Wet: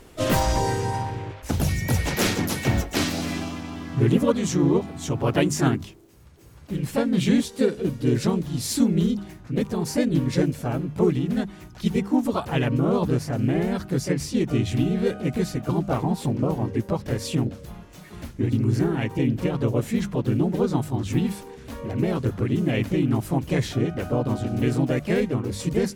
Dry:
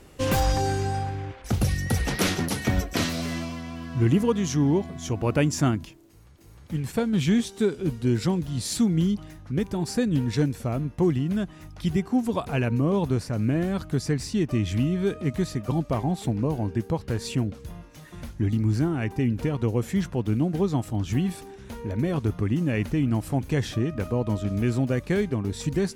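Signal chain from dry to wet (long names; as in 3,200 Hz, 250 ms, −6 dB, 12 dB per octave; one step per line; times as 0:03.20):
pitch-shifted copies added +3 semitones −3 dB, +4 semitones −10 dB
mains-hum notches 50/100/150/200 Hz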